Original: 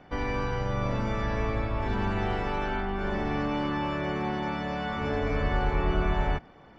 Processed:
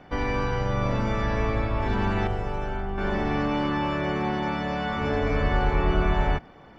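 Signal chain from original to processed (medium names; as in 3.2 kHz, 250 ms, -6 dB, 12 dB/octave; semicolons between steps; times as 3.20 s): 2.27–2.98 s: graphic EQ 125/250/1000/2000/4000 Hz +3/-9/-5/-7/-9 dB; trim +3.5 dB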